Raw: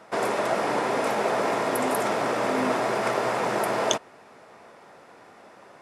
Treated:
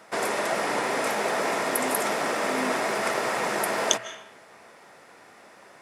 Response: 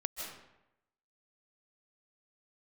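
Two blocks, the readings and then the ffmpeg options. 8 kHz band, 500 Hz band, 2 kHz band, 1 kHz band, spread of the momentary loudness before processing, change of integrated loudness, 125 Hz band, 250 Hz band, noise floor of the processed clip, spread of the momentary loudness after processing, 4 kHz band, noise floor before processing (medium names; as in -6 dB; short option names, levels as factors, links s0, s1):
+5.0 dB, -2.5 dB, +2.5 dB, -1.5 dB, 1 LU, -0.5 dB, -5.0 dB, -3.0 dB, -52 dBFS, 2 LU, +2.5 dB, -51 dBFS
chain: -filter_complex "[0:a]highshelf=f=3900:g=10,bandreject=f=60:t=h:w=6,bandreject=f=120:t=h:w=6,asplit=2[s0][s1];[s1]equalizer=f=1900:w=1:g=15[s2];[1:a]atrim=start_sample=2205[s3];[s2][s3]afir=irnorm=-1:irlink=0,volume=0.15[s4];[s0][s4]amix=inputs=2:normalize=0,volume=0.631"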